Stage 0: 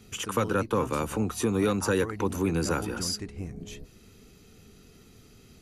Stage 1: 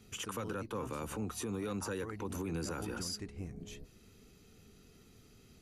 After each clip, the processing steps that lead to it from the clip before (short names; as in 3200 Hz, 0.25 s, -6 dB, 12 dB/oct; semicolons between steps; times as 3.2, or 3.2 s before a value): limiter -23.5 dBFS, peak gain reduction 8 dB; gain -6.5 dB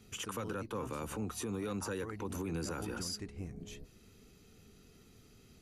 nothing audible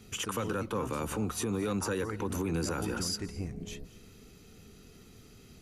reverb RT60 0.35 s, pre-delay 0.213 s, DRR 18 dB; gain +6 dB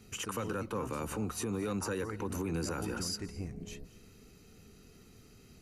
notch 3400 Hz, Q 8.7; gain -3 dB